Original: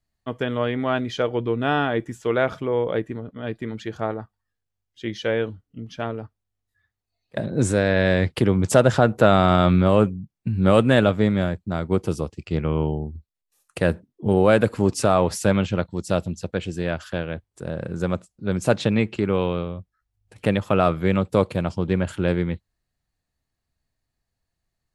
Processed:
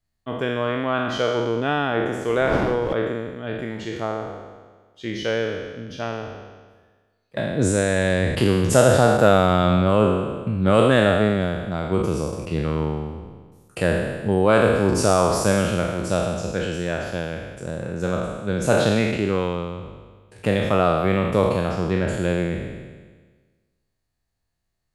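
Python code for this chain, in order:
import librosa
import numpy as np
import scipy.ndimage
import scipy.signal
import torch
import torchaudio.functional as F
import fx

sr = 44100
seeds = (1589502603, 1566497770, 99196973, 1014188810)

y = fx.spec_trails(x, sr, decay_s=1.44)
y = fx.dmg_wind(y, sr, seeds[0], corner_hz=580.0, level_db=-23.0, at=(2.27, 2.92), fade=0.02)
y = F.gain(torch.from_numpy(y), -2.0).numpy()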